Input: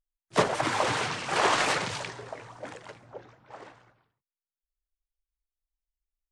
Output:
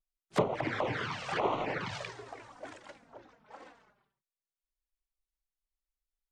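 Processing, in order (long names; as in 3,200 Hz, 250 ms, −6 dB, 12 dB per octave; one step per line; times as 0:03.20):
treble cut that deepens with the level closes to 1,500 Hz, closed at −21.5 dBFS
flanger swept by the level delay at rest 5.3 ms, full sweep at −23 dBFS
level −2 dB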